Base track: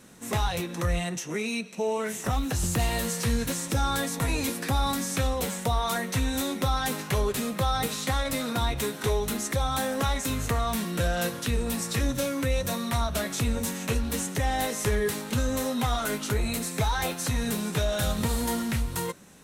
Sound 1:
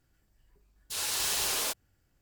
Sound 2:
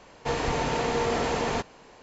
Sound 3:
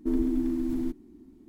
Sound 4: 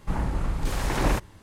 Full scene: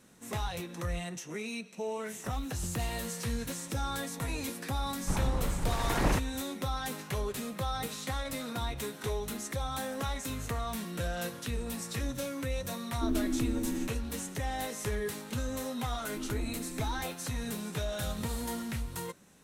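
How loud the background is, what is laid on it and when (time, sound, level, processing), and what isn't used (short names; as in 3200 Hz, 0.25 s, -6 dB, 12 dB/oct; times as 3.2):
base track -8 dB
5 add 4 -2.5 dB + harmonic-percussive split harmonic -4 dB
12.96 add 3 -5 dB
16.1 add 3 -14.5 dB
not used: 1, 2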